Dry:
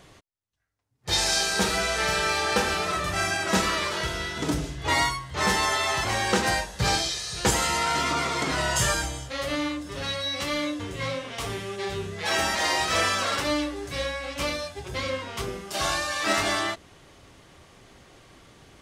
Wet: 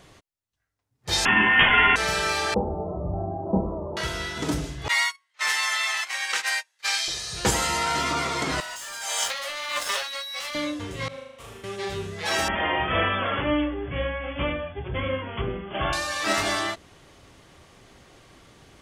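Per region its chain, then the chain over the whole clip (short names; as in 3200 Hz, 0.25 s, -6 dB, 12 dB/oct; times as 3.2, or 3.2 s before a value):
1.25–1.96 bell 1800 Hz +12 dB 2.8 oct + inverted band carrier 3400 Hz
2.54–3.97 steep low-pass 890 Hz 48 dB/oct + low shelf 220 Hz +6 dB
4.88–7.08 HPF 1400 Hz + gate -31 dBFS, range -28 dB + bell 2200 Hz +5.5 dB 0.68 oct
8.6–10.55 Bessel high-pass 930 Hz, order 8 + sample leveller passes 3 + negative-ratio compressor -32 dBFS
11.08–11.64 expander -23 dBFS + bell 4900 Hz -7 dB 0.67 oct + flutter echo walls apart 6.6 m, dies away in 0.98 s
12.48–15.93 brick-wall FIR low-pass 3500 Hz + low shelf 350 Hz +6.5 dB
whole clip: dry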